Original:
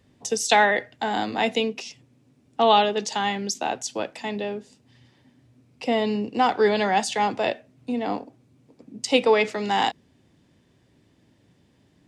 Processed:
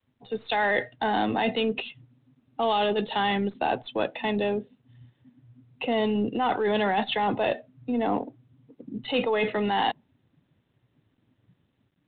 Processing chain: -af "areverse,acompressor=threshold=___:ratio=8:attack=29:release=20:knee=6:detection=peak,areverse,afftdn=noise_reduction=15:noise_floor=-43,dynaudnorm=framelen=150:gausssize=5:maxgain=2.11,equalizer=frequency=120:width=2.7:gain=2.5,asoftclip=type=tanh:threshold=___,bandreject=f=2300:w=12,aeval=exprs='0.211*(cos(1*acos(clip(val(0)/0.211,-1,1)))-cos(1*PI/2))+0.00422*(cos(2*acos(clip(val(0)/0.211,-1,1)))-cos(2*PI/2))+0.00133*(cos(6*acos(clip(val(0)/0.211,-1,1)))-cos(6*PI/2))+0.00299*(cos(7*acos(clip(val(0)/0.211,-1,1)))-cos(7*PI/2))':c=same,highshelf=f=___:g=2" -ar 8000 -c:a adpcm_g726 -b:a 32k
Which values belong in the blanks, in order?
0.02, 0.237, 2700